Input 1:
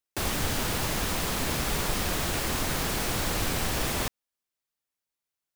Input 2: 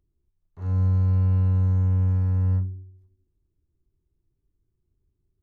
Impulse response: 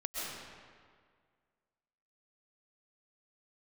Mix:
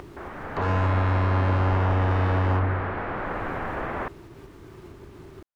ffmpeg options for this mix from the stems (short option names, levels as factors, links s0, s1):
-filter_complex "[0:a]lowpass=f=1700:w=0.5412,lowpass=f=1700:w=1.3066,lowshelf=f=280:g=-11.5,dynaudnorm=f=160:g=7:m=2.82,volume=0.631[s0];[1:a]equalizer=f=1200:t=o:w=2.7:g=6.5,acompressor=mode=upward:threshold=0.0112:ratio=2.5,asplit=2[s1][s2];[s2]highpass=f=720:p=1,volume=63.1,asoftclip=type=tanh:threshold=0.188[s3];[s1][s3]amix=inputs=2:normalize=0,lowpass=f=1300:p=1,volume=0.501,volume=0.794[s4];[s0][s4]amix=inputs=2:normalize=0"